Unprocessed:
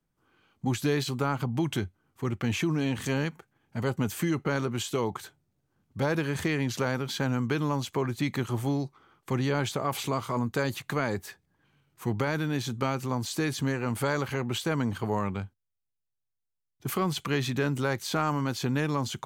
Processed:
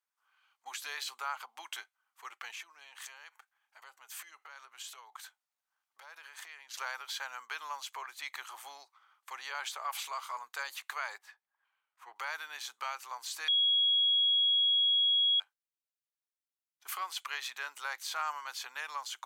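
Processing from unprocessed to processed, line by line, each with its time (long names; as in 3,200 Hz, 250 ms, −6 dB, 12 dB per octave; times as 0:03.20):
0:02.51–0:06.74: downward compressor 8 to 1, threshold −35 dBFS
0:11.18–0:12.16: low-pass filter 1,400 Hz 6 dB per octave
0:13.48–0:15.40: beep over 3,320 Hz −20 dBFS
whole clip: inverse Chebyshev high-pass filter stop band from 150 Hz, stop band 80 dB; level −4 dB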